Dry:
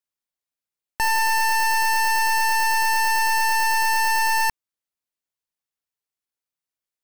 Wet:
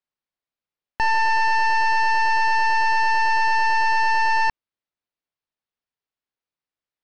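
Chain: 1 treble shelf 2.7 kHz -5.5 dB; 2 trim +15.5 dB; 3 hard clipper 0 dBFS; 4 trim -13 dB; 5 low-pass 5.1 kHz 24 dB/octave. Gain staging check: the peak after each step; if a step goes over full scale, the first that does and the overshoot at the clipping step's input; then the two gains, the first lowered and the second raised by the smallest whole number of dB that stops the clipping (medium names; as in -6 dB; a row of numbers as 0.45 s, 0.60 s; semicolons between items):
-19.5 dBFS, -4.0 dBFS, -4.0 dBFS, -17.0 dBFS, -17.0 dBFS; nothing clips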